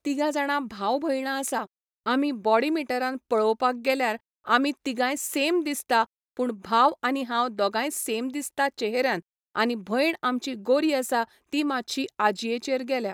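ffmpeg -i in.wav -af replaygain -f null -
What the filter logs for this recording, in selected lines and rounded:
track_gain = +5.6 dB
track_peak = 0.327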